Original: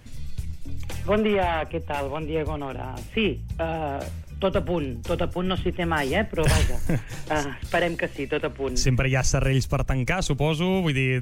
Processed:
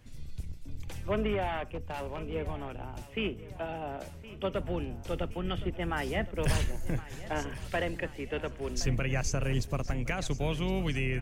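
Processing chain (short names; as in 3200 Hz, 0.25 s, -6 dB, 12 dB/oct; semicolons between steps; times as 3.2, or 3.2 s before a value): octaver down 2 oct, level -2 dB; 1.65–2.35 overloaded stage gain 22 dB; 3.03–4.6 low shelf 80 Hz -10.5 dB; on a send: feedback echo 1.067 s, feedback 55%, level -16.5 dB; on the sum: gain -9 dB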